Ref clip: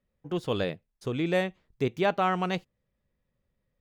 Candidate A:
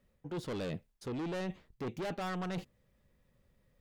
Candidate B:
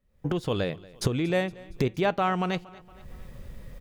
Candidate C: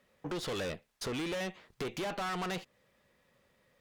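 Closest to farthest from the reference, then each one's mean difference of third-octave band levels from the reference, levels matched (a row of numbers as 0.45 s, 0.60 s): B, A, C; 3.5 dB, 6.0 dB, 9.5 dB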